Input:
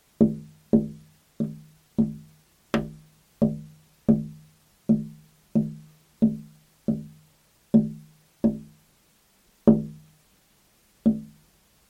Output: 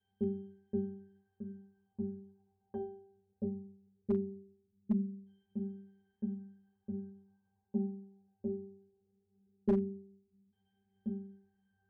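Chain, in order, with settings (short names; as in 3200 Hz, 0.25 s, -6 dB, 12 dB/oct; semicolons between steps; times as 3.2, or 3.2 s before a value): LFO low-pass saw down 0.19 Hz 230–3000 Hz; octave resonator G, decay 0.67 s; one-sided clip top -26.5 dBFS; gain +2.5 dB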